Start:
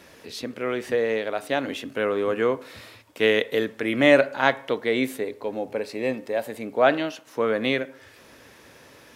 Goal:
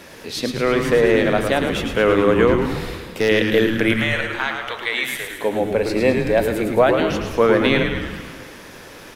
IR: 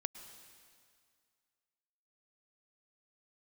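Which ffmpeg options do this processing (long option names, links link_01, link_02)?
-filter_complex "[0:a]alimiter=limit=-13.5dB:level=0:latency=1:release=323,asettb=1/sr,asplit=3[link_01][link_02][link_03];[link_01]atrim=end=2.474[link_04];[link_02]atrim=start=2.47:end=3.29,asetpts=PTS-STARTPTS,afade=type=in:duration=0.004:curve=qsin,afade=type=out:start_time=0.816:duration=0.004:curve=qsin,aeval=exprs='clip(val(0),-1,0.0708)':channel_layout=same[link_05];[link_03]atrim=start=3.286[link_06];[link_04][link_05]acrossfade=duration=0.004:curve1=hsin:curve2=qsin[link_07];[link_07][link_06]acrossfade=duration=0.004:curve1=qsin:curve2=hsin,asettb=1/sr,asplit=3[link_08][link_09][link_10];[link_08]atrim=end=3.934[link_11];[link_09]atrim=start=3.93:end=5.39,asetpts=PTS-STARTPTS,afade=type=in:duration=0.004:curve=qsin,afade=type=out:start_time=1.456:duration=0.004:curve=qsin,highpass=1200[link_12];[link_10]atrim=start=5.386[link_13];[link_11][link_12]acrossfade=duration=0.004:curve1=hsin:curve2=qsin[link_14];[link_14][link_13]acrossfade=duration=0.004:curve1=qsin:curve2=hsin,asplit=9[link_15][link_16][link_17][link_18][link_19][link_20][link_21][link_22][link_23];[link_16]adelay=108,afreqshift=-110,volume=-5.5dB[link_24];[link_17]adelay=216,afreqshift=-220,volume=-10.2dB[link_25];[link_18]adelay=324,afreqshift=-330,volume=-15dB[link_26];[link_19]adelay=432,afreqshift=-440,volume=-19.7dB[link_27];[link_20]adelay=540,afreqshift=-550,volume=-24.4dB[link_28];[link_21]adelay=648,afreqshift=-660,volume=-29.2dB[link_29];[link_22]adelay=756,afreqshift=-770,volume=-33.9dB[link_30];[link_23]adelay=864,afreqshift=-880,volume=-38.6dB[link_31];[link_15][link_24][link_25][link_26][link_27][link_28][link_29][link_30][link_31]amix=inputs=9:normalize=0,asplit=2[link_32][link_33];[1:a]atrim=start_sample=2205[link_34];[link_33][link_34]afir=irnorm=-1:irlink=0,volume=6dB[link_35];[link_32][link_35]amix=inputs=2:normalize=0"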